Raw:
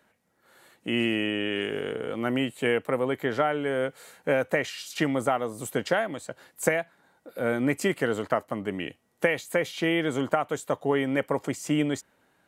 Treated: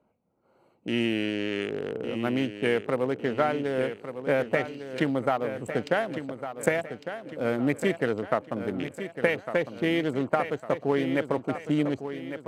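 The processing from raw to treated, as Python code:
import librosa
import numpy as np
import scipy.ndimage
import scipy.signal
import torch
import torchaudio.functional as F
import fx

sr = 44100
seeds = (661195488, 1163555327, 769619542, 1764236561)

y = fx.wiener(x, sr, points=25)
y = fx.echo_feedback(y, sr, ms=1154, feedback_pct=43, wet_db=-10.0)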